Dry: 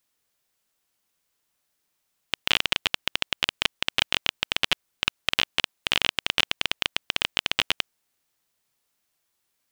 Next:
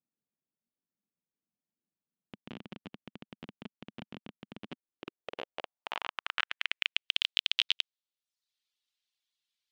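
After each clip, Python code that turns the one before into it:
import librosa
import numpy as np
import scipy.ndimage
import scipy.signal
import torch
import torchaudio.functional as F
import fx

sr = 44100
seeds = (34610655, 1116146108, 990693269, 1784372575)

y = fx.dereverb_blind(x, sr, rt60_s=0.66)
y = fx.filter_sweep_bandpass(y, sr, from_hz=210.0, to_hz=3600.0, start_s=4.58, end_s=7.24, q=2.4)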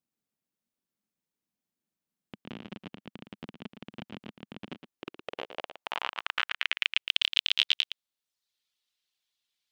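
y = x + 10.0 ** (-9.5 / 20.0) * np.pad(x, (int(114 * sr / 1000.0), 0))[:len(x)]
y = y * 10.0 ** (3.0 / 20.0)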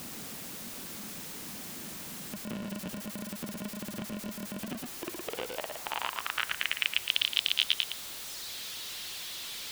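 y = x + 0.5 * 10.0 ** (-31.0 / 20.0) * np.sign(x)
y = y * 10.0 ** (-2.5 / 20.0)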